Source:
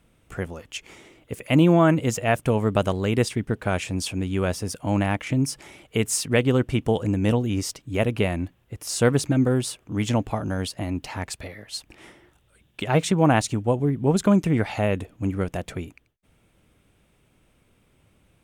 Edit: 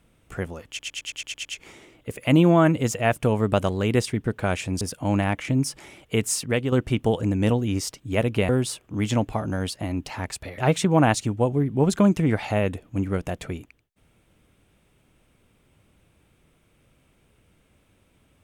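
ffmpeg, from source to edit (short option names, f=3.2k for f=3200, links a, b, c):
-filter_complex "[0:a]asplit=12[a][b][c][d][e][f][g][h][i][j][k][l];[a]atrim=end=0.792[m];[b]atrim=start=0.678:end=0.792[n];[c]atrim=start=0.678:end=0.792[o];[d]atrim=start=0.678:end=0.792[p];[e]atrim=start=0.678:end=0.792[q];[f]atrim=start=0.678:end=0.792[r];[g]atrim=start=0.678:end=0.792[s];[h]atrim=start=0.678:end=4.042[t];[i]atrim=start=4.628:end=6.54,asetpts=PTS-STARTPTS,afade=t=out:st=1.452:d=0.46:silence=0.473151[u];[j]atrim=start=6.54:end=8.312,asetpts=PTS-STARTPTS,afade=t=in:d=0.004:c=hsin:silence=0.473151[v];[k]atrim=start=9.468:end=11.562[w];[l]atrim=start=12.848[x];[m][n]acrossfade=d=0.004:c1=hsin:c2=hsin[y];[y][o]acrossfade=d=0.004:c1=hsin:c2=hsin[z];[z][p]acrossfade=d=0.004:c1=hsin:c2=hsin[aa];[aa][q]acrossfade=d=0.004:c1=hsin:c2=hsin[ab];[ab][r]acrossfade=d=0.004:c1=hsin:c2=hsin[ac];[ac][s]acrossfade=d=0.004:c1=hsin:c2=hsin[ad];[ad][t]acrossfade=d=0.004:c1=hsin:c2=hsin[ae];[u][v]concat=n=2:v=0:a=1[af];[ae][af]acrossfade=d=0.004:c1=hsin:c2=hsin[ag];[ag][w]acrossfade=d=0.004:c1=hsin:c2=hsin[ah];[ah][x]acrossfade=d=0.004:c1=hsin:c2=hsin"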